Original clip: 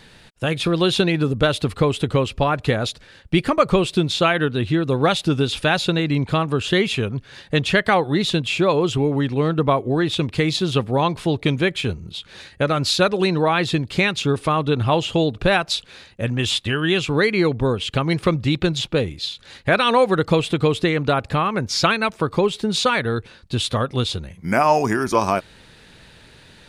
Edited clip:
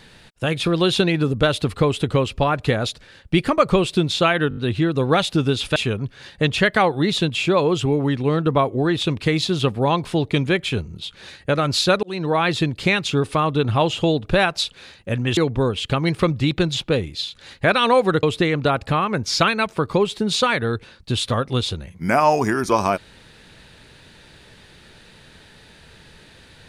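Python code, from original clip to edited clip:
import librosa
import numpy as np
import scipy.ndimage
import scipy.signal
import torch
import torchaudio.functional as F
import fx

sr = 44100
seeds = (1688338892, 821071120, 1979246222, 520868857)

y = fx.edit(x, sr, fx.stutter(start_s=4.49, slice_s=0.02, count=5),
    fx.cut(start_s=5.68, length_s=1.2),
    fx.fade_in_span(start_s=13.15, length_s=0.47, curve='qsin'),
    fx.cut(start_s=16.49, length_s=0.92),
    fx.cut(start_s=20.27, length_s=0.39), tone=tone)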